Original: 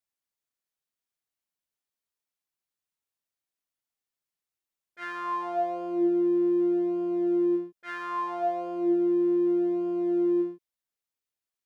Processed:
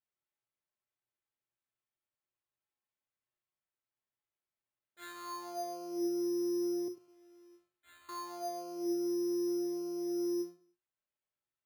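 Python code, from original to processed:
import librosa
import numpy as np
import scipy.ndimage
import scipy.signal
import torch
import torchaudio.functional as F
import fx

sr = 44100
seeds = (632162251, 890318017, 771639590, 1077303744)

y = fx.differentiator(x, sr, at=(6.88, 8.09))
y = fx.comb_fb(y, sr, f0_hz=120.0, decay_s=0.32, harmonics='odd', damping=0.0, mix_pct=80)
y = fx.echo_feedback(y, sr, ms=99, feedback_pct=24, wet_db=-15.5)
y = np.repeat(y[::8], 8)[:len(y)]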